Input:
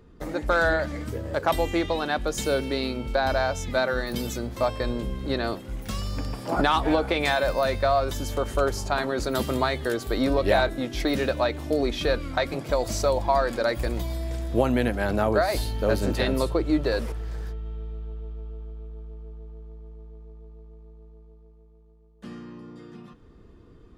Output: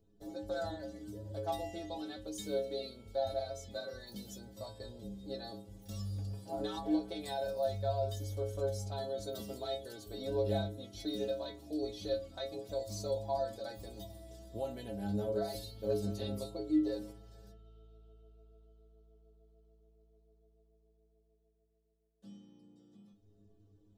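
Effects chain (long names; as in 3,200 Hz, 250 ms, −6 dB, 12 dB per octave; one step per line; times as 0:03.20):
flat-topped bell 1,600 Hz −13 dB
stiff-string resonator 99 Hz, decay 0.5 s, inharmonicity 0.008
level −1.5 dB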